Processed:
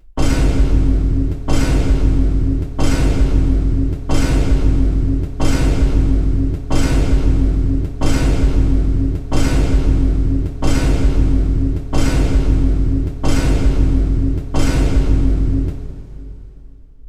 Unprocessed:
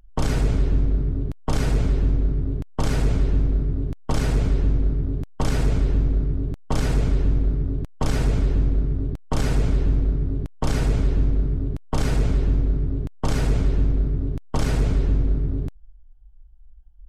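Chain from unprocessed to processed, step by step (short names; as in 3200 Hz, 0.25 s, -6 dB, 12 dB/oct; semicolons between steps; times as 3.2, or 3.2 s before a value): two-slope reverb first 0.25 s, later 3 s, from -18 dB, DRR -6.5 dB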